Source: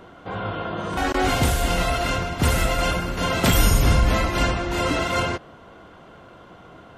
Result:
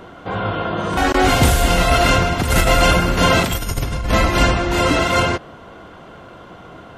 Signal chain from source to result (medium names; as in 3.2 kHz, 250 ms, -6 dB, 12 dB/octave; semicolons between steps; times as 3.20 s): 1.91–4.13 s: compressor with a negative ratio -21 dBFS, ratio -0.5; trim +6.5 dB